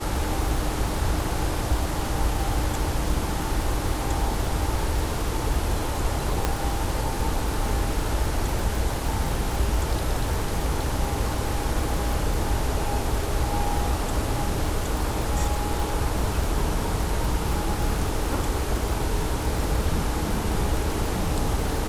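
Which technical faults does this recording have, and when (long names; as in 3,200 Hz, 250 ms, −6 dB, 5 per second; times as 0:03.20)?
surface crackle 55 per second −27 dBFS
0:06.45: click −8 dBFS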